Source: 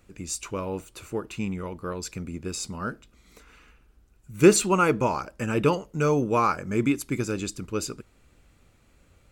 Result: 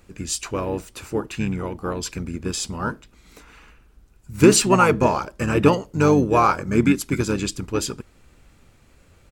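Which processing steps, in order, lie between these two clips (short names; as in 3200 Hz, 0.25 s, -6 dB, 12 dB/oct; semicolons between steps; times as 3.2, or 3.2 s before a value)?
harmoniser -7 st -7 dB; maximiser +6.5 dB; gain -1.5 dB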